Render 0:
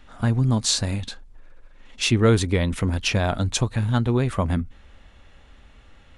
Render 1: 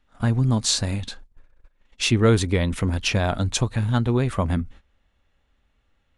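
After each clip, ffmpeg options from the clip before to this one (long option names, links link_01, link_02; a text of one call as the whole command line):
ffmpeg -i in.wav -af "agate=range=-17dB:threshold=-41dB:ratio=16:detection=peak" out.wav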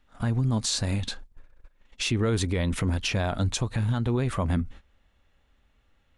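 ffmpeg -i in.wav -af "alimiter=limit=-19dB:level=0:latency=1:release=147,volume=1.5dB" out.wav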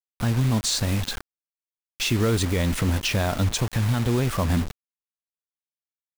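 ffmpeg -i in.wav -af "acrusher=bits=5:mix=0:aa=0.000001,volume=3dB" out.wav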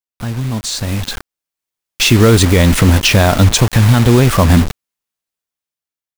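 ffmpeg -i in.wav -af "dynaudnorm=framelen=380:gausssize=7:maxgain=13.5dB,volume=1.5dB" out.wav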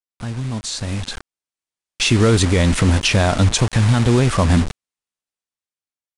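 ffmpeg -i in.wav -af "aresample=22050,aresample=44100,volume=-5.5dB" out.wav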